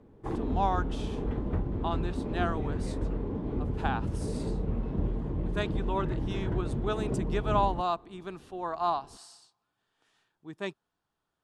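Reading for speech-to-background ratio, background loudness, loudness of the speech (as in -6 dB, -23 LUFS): -0.5 dB, -33.5 LUFS, -34.0 LUFS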